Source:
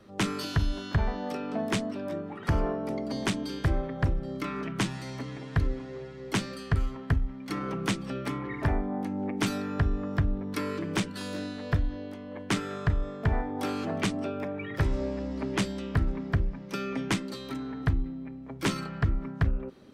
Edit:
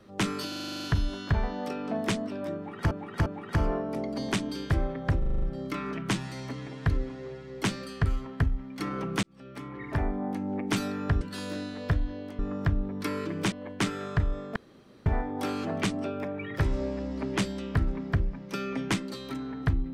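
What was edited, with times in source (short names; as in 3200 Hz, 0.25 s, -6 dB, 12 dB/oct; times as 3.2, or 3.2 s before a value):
0.48 stutter 0.04 s, 10 plays
2.2–2.55 loop, 3 plays
4.12 stutter 0.04 s, 7 plays
7.93–8.86 fade in
9.91–11.04 move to 12.22
13.26 insert room tone 0.50 s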